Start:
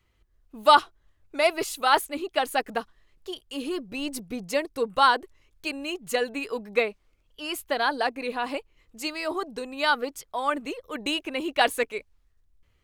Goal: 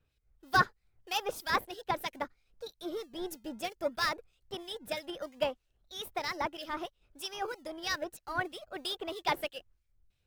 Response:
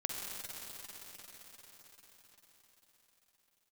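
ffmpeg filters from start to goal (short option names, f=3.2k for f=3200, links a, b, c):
-filter_complex "[0:a]asetrate=55125,aresample=44100,asplit=2[a][b];[b]acrusher=samples=30:mix=1:aa=0.000001:lfo=1:lforange=18:lforate=0.65,volume=-12dB[c];[a][c]amix=inputs=2:normalize=0,acrossover=split=2100[d][e];[d]aeval=exprs='val(0)*(1-0.7/2+0.7/2*cos(2*PI*3.1*n/s))':c=same[f];[e]aeval=exprs='val(0)*(1-0.7/2-0.7/2*cos(2*PI*3.1*n/s))':c=same[g];[f][g]amix=inputs=2:normalize=0,volume=-6dB"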